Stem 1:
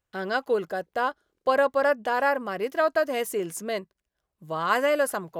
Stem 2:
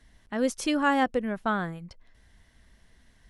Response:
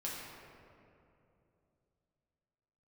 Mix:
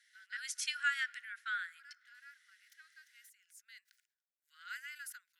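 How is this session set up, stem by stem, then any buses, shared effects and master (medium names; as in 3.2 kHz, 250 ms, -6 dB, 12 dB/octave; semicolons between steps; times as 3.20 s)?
-14.5 dB, 0.00 s, no send, decay stretcher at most 130 dB/s; auto duck -11 dB, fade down 0.55 s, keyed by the second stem
-2.0 dB, 0.00 s, send -21 dB, none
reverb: on, RT60 2.8 s, pre-delay 6 ms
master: rippled Chebyshev high-pass 1.4 kHz, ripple 3 dB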